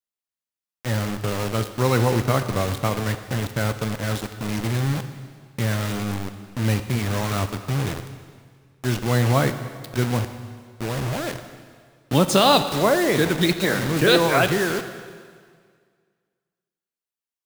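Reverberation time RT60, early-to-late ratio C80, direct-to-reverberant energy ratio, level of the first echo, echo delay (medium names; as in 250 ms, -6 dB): 1.9 s, 11.0 dB, 9.0 dB, no echo, no echo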